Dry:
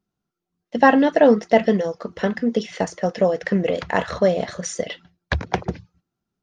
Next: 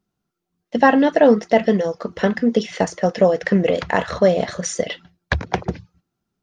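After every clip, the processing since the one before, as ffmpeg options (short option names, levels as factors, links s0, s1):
-af "alimiter=limit=0.447:level=0:latency=1:release=442,volume=1.5"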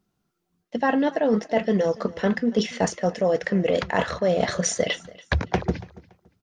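-af "areverse,acompressor=threshold=0.0891:ratio=12,areverse,aecho=1:1:284|568:0.0891|0.0223,volume=1.41"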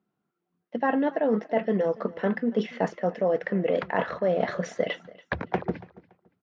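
-af "highpass=170,lowpass=2200,volume=0.75"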